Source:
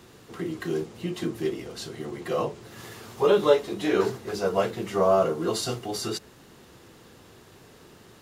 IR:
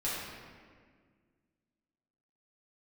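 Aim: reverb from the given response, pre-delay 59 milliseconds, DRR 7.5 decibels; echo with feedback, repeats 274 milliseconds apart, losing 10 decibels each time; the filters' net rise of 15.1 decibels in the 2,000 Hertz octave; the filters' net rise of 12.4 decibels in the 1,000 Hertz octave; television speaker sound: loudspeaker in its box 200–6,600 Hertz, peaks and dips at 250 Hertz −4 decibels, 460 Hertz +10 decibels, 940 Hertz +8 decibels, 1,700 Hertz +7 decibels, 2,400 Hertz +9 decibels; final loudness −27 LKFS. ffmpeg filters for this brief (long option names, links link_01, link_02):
-filter_complex "[0:a]equalizer=frequency=1000:width_type=o:gain=7.5,equalizer=frequency=2000:width_type=o:gain=8.5,aecho=1:1:274|548|822|1096:0.316|0.101|0.0324|0.0104,asplit=2[link_01][link_02];[1:a]atrim=start_sample=2205,adelay=59[link_03];[link_02][link_03]afir=irnorm=-1:irlink=0,volume=-13.5dB[link_04];[link_01][link_04]amix=inputs=2:normalize=0,highpass=frequency=200:width=0.5412,highpass=frequency=200:width=1.3066,equalizer=frequency=250:width_type=q:width=4:gain=-4,equalizer=frequency=460:width_type=q:width=4:gain=10,equalizer=frequency=940:width_type=q:width=4:gain=8,equalizer=frequency=1700:width_type=q:width=4:gain=7,equalizer=frequency=2400:width_type=q:width=4:gain=9,lowpass=frequency=6600:width=0.5412,lowpass=frequency=6600:width=1.3066,volume=-10dB"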